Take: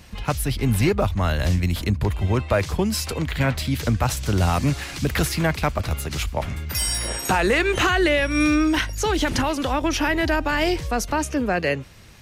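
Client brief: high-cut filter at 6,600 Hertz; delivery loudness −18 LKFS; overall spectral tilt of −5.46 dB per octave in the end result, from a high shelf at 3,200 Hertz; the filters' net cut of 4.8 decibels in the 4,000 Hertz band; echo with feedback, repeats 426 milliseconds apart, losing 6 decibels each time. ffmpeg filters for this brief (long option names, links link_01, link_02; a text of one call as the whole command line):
ffmpeg -i in.wav -af "lowpass=6600,highshelf=frequency=3200:gain=-4,equalizer=frequency=4000:width_type=o:gain=-3,aecho=1:1:426|852|1278|1704|2130|2556:0.501|0.251|0.125|0.0626|0.0313|0.0157,volume=4dB" out.wav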